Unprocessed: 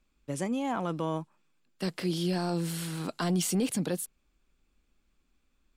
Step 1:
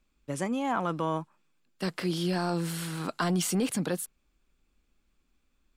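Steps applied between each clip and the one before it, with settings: dynamic bell 1.3 kHz, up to +6 dB, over -49 dBFS, Q 0.99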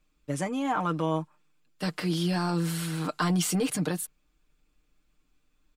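comb 6.6 ms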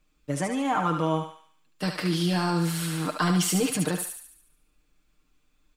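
thinning echo 72 ms, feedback 52%, high-pass 790 Hz, level -4.5 dB; trim +2 dB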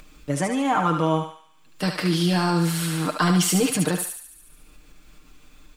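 upward compressor, threshold -38 dBFS; trim +4 dB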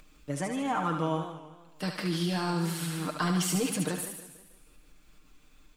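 modulated delay 159 ms, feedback 44%, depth 180 cents, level -12.5 dB; trim -8.5 dB

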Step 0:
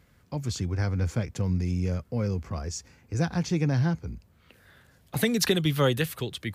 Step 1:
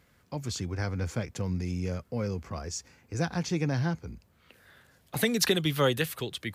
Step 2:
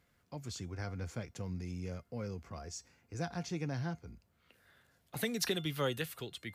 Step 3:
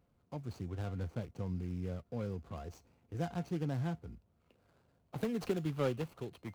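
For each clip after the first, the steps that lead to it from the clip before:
bass shelf 200 Hz -7 dB
feedback comb 700 Hz, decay 0.23 s, harmonics all, mix 60%; trim -1.5 dB
median filter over 25 samples; trim +2 dB

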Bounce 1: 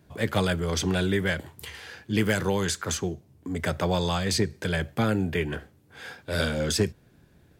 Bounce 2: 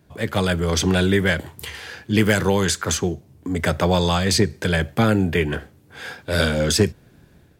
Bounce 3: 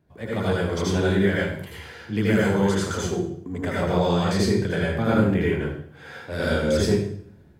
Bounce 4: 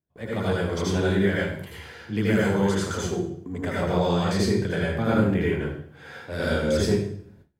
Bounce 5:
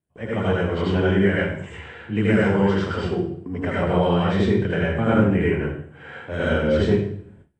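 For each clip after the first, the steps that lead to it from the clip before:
level rider gain up to 5.5 dB; trim +1.5 dB
treble shelf 2.6 kHz -10 dB; reverberation RT60 0.60 s, pre-delay 74 ms, DRR -6 dB; trim -8.5 dB
gate with hold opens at -41 dBFS; trim -1.5 dB
knee-point frequency compression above 2.5 kHz 1.5:1; high-order bell 5.1 kHz -11.5 dB 1 oct; trim +3.5 dB

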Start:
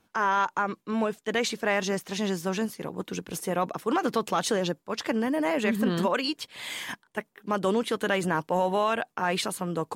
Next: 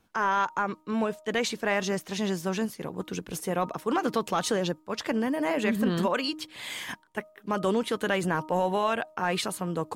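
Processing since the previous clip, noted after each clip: bass shelf 68 Hz +9.5 dB; de-hum 311.1 Hz, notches 4; trim -1 dB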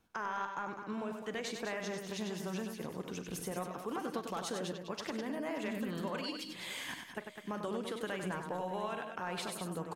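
compression 3:1, threshold -32 dBFS, peak gain reduction 8.5 dB; on a send: multi-tap echo 43/96/204/576/674 ms -15/-6.5/-8.5/-19/-18.5 dB; on the sum: trim -6 dB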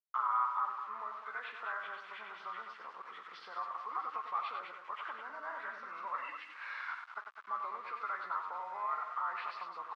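knee-point frequency compression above 1 kHz 1.5:1; small samples zeroed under -49.5 dBFS; ladder band-pass 1.3 kHz, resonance 70%; trim +11.5 dB

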